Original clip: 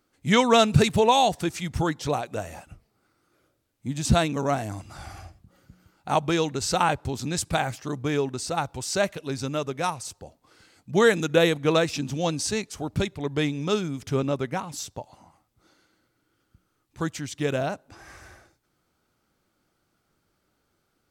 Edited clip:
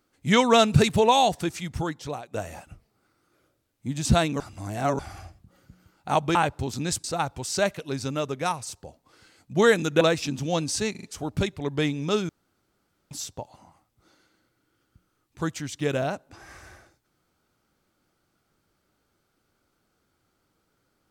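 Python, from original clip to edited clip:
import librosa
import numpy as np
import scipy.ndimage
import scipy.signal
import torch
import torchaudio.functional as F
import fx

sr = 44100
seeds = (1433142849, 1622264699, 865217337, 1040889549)

y = fx.edit(x, sr, fx.fade_out_to(start_s=1.32, length_s=1.02, floor_db=-11.0),
    fx.reverse_span(start_s=4.4, length_s=0.59),
    fx.cut(start_s=6.35, length_s=0.46),
    fx.cut(start_s=7.5, length_s=0.92),
    fx.cut(start_s=11.39, length_s=0.33),
    fx.stutter(start_s=12.62, slice_s=0.04, count=4),
    fx.room_tone_fill(start_s=13.88, length_s=0.82), tone=tone)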